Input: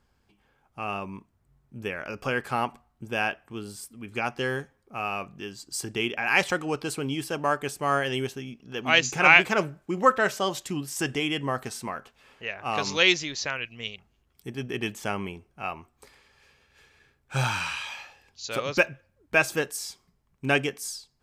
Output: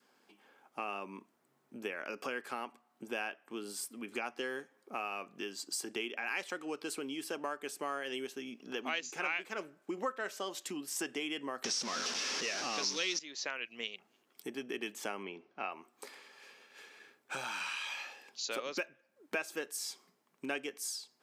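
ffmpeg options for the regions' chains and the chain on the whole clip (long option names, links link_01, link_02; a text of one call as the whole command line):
ffmpeg -i in.wav -filter_complex "[0:a]asettb=1/sr,asplit=3[link_01][link_02][link_03];[link_01]atrim=end=11.644[link_04];[link_02]atrim=start=11.64:end=13.19,asetpts=PTS-STARTPTS,afade=type=in:duration=0.004:curve=qsin,afade=type=out:start_time=1.546:duration=0.004:curve=qsin,aeval=exprs='val(0)+0.5*0.0794*sgn(val(0))':channel_layout=same,lowpass=frequency=5600:width_type=q:width=5.1,lowshelf=frequency=180:gain=8[link_05];[link_03]atrim=start=13.186[link_06];[link_04][link_05]acrossfade=duration=0.004:curve1=hsin:curve2=qsin[link_07];[link_07][link_06]acrossfade=duration=0.004:curve1=qsin:curve2=hsin,asettb=1/sr,asplit=3[link_08][link_09][link_10];[link_08]atrim=end=15.234[link_11];[link_09]atrim=start=15.23:end=15.72,asetpts=PTS-STARTPTS,afade=type=in:duration=0.004:curve=qsin,afade=type=out:start_time=0.486:duration=0.004:curve=qsin,lowpass=frequency=5000:width=0.5412,lowpass=frequency=5000:width=1.3066,bandreject=frequency=50:width_type=h:width=6,bandreject=frequency=100:width_type=h:width=6,bandreject=frequency=150:width_type=h:width=6[link_12];[link_10]atrim=start=15.716[link_13];[link_11][link_12]acrossfade=duration=0.004:curve1=hsin:curve2=qsin[link_14];[link_14][link_13]acrossfade=duration=0.004:curve1=qsin:curve2=hsin,acompressor=threshold=-41dB:ratio=4,highpass=frequency=250:width=0.5412,highpass=frequency=250:width=1.3066,adynamicequalizer=threshold=0.00141:dfrequency=770:dqfactor=1.5:tfrequency=770:tqfactor=1.5:attack=5:release=100:ratio=0.375:range=2.5:mode=cutabove:tftype=bell,volume=4dB" out.wav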